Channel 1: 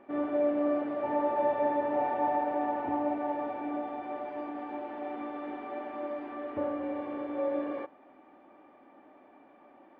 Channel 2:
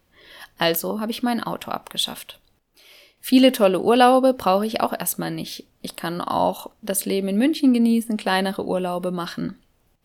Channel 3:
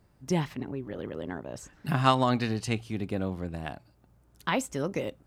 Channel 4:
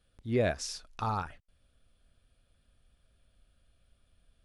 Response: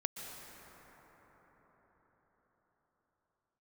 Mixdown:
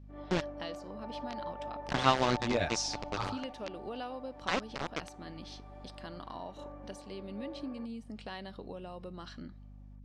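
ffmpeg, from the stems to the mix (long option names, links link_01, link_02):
-filter_complex "[0:a]adynamicequalizer=threshold=0.00794:dfrequency=930:dqfactor=0.91:tfrequency=930:tqfactor=0.91:attack=5:release=100:ratio=0.375:range=3.5:mode=boostabove:tftype=bell,volume=-18.5dB[link_01];[1:a]highshelf=frequency=5700:gain=8.5,aeval=exprs='val(0)+0.0251*(sin(2*PI*50*n/s)+sin(2*PI*2*50*n/s)/2+sin(2*PI*3*50*n/s)/3+sin(2*PI*4*50*n/s)/4+sin(2*PI*5*50*n/s)/5)':channel_layout=same,acompressor=threshold=-23dB:ratio=3,volume=-17.5dB,asplit=2[link_02][link_03];[2:a]aeval=exprs='val(0)+0.00631*(sin(2*PI*60*n/s)+sin(2*PI*2*60*n/s)/2+sin(2*PI*3*60*n/s)/3+sin(2*PI*4*60*n/s)/4+sin(2*PI*5*60*n/s)/5)':channel_layout=same,aeval=exprs='val(0)*gte(abs(val(0)),0.075)':channel_layout=same,volume=-3dB[link_04];[3:a]crystalizer=i=4:c=0,asplit=2[link_05][link_06];[link_06]adelay=8,afreqshift=1.8[link_07];[link_05][link_07]amix=inputs=2:normalize=1,adelay=2150,volume=0dB[link_08];[link_03]apad=whole_len=290930[link_09];[link_08][link_09]sidechaincompress=threshold=-48dB:ratio=8:attack=12:release=262[link_10];[link_01][link_02][link_04][link_10]amix=inputs=4:normalize=0,lowpass=frequency=6100:width=0.5412,lowpass=frequency=6100:width=1.3066"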